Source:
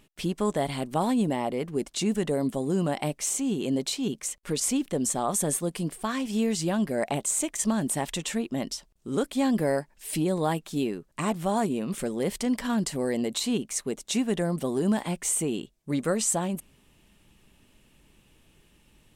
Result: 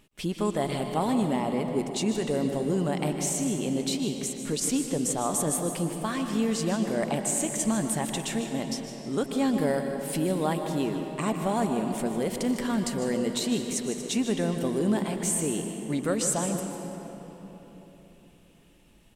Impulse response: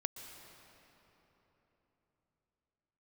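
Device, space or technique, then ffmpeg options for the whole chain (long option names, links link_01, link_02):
cave: -filter_complex "[0:a]aecho=1:1:153:0.251[link_01];[1:a]atrim=start_sample=2205[link_02];[link_01][link_02]afir=irnorm=-1:irlink=0"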